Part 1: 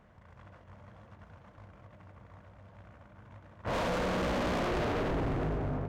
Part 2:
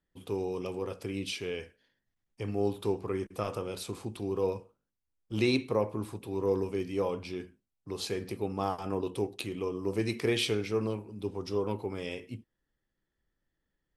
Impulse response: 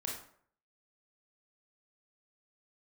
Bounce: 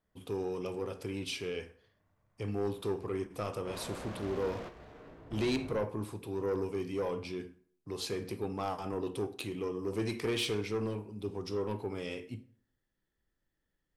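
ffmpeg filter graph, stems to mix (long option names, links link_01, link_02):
-filter_complex "[0:a]volume=-15dB,asplit=2[link_01][link_02];[link_02]volume=-8dB[link_03];[1:a]asoftclip=type=tanh:threshold=-25.5dB,volume=-2.5dB,asplit=3[link_04][link_05][link_06];[link_05]volume=-11dB[link_07];[link_06]apad=whole_len=259632[link_08];[link_01][link_08]sidechaingate=range=-33dB:threshold=-51dB:ratio=16:detection=peak[link_09];[2:a]atrim=start_sample=2205[link_10];[link_03][link_07]amix=inputs=2:normalize=0[link_11];[link_11][link_10]afir=irnorm=-1:irlink=0[link_12];[link_09][link_04][link_12]amix=inputs=3:normalize=0"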